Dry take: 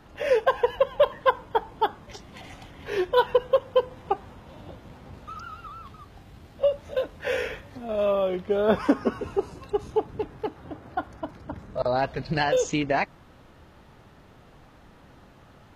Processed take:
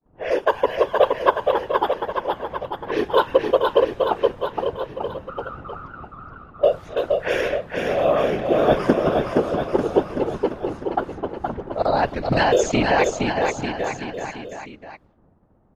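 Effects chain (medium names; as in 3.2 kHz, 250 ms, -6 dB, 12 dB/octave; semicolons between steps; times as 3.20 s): whisper effect; expander -42 dBFS; level rider gain up to 4.5 dB; level-controlled noise filter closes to 740 Hz, open at -19 dBFS; on a send: bouncing-ball echo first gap 470 ms, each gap 0.9×, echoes 5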